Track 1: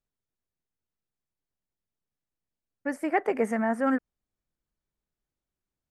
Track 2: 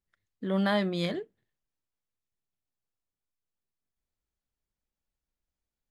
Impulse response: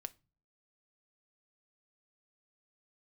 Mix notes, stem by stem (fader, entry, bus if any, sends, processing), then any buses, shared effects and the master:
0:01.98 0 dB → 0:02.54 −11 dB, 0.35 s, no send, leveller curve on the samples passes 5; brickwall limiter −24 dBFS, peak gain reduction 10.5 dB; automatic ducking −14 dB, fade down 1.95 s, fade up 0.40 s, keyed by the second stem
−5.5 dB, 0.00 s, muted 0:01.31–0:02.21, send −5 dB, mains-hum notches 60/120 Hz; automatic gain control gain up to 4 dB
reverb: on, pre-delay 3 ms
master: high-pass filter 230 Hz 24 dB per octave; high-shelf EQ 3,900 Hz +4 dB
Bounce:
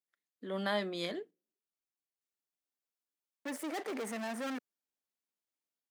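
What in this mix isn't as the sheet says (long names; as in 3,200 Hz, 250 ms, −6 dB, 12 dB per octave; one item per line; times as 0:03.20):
stem 1: entry 0.35 s → 0.60 s
stem 2 −5.5 dB → −12.0 dB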